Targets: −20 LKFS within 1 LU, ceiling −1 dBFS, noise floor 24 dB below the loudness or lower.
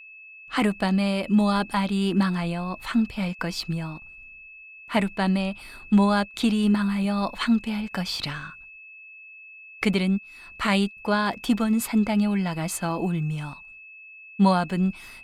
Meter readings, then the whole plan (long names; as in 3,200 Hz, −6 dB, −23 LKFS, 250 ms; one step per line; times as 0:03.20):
interfering tone 2,600 Hz; level of the tone −43 dBFS; integrated loudness −24.5 LKFS; sample peak −9.0 dBFS; target loudness −20.0 LKFS
→ notch filter 2,600 Hz, Q 30
level +4.5 dB